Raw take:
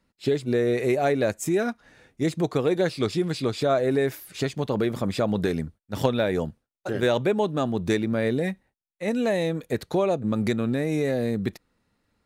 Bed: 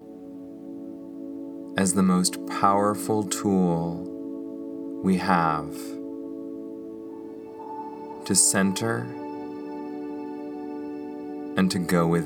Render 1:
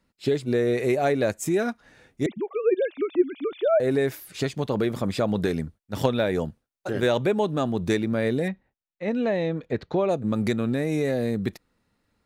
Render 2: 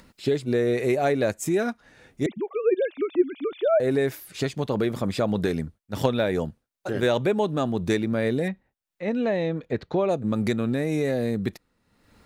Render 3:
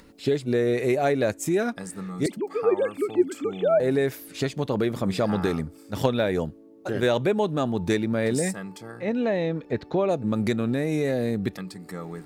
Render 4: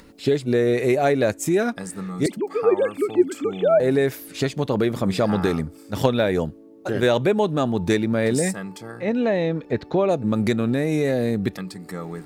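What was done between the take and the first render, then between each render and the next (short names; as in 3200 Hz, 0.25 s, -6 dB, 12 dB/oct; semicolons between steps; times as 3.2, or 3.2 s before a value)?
2.26–3.8 sine-wave speech; 6.97–7.85 upward compressor, threshold -23 dBFS; 8.48–10.09 air absorption 200 m
upward compressor, threshold -40 dBFS
add bed -14.5 dB
gain +3.5 dB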